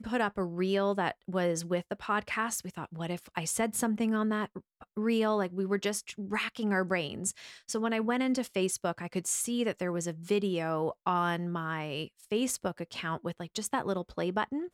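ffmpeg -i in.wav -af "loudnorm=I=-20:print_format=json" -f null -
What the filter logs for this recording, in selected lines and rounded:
"input_i" : "-32.3",
"input_tp" : "-15.4",
"input_lra" : "2.8",
"input_thresh" : "-42.3",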